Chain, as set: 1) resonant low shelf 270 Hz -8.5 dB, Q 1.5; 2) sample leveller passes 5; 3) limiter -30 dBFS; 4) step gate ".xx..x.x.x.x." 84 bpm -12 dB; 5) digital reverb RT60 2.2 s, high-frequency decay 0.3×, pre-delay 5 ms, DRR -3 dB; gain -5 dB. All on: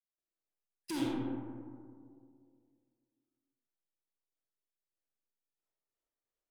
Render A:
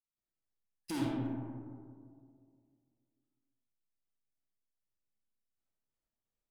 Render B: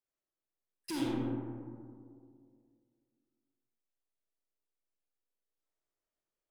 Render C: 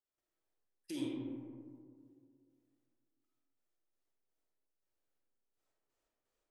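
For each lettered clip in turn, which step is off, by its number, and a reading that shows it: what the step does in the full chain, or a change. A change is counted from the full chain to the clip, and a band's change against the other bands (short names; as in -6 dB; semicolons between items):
1, 125 Hz band +6.0 dB; 4, 125 Hz band +3.5 dB; 2, 1 kHz band -10.5 dB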